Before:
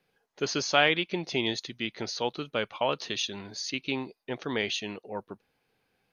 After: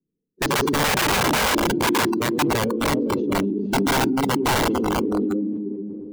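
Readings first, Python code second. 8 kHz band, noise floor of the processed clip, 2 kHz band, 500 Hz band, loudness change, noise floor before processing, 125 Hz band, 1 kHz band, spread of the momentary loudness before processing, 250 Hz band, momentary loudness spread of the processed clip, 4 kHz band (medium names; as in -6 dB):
+11.0 dB, -80 dBFS, +7.0 dB, +8.0 dB, +9.0 dB, -76 dBFS, +13.5 dB, +11.5 dB, 14 LU, +14.5 dB, 6 LU, +4.0 dB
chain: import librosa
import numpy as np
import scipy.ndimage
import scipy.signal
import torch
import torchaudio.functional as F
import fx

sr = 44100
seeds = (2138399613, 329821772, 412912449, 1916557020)

p1 = fx.reverse_delay_fb(x, sr, ms=239, feedback_pct=53, wet_db=-6.0)
p2 = fx.env_lowpass(p1, sr, base_hz=300.0, full_db=-26.5)
p3 = fx.curve_eq(p2, sr, hz=(110.0, 220.0, 320.0, 1000.0), db=(0, 8, 12, -27))
p4 = 10.0 ** (-33.0 / 20.0) * np.tanh(p3 / 10.0 ** (-33.0 / 20.0))
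p5 = p3 + (p4 * 10.0 ** (-8.0 / 20.0))
p6 = fx.lowpass(p5, sr, hz=2800.0, slope=6)
p7 = p6 + fx.echo_feedback(p6, sr, ms=117, feedback_pct=59, wet_db=-9.0, dry=0)
p8 = (np.mod(10.0 ** (22.0 / 20.0) * p7 + 1.0, 2.0) - 1.0) / 10.0 ** (22.0 / 20.0)
p9 = fx.noise_reduce_blind(p8, sr, reduce_db=16)
p10 = fx.sustainer(p9, sr, db_per_s=21.0)
y = p10 * 10.0 ** (6.5 / 20.0)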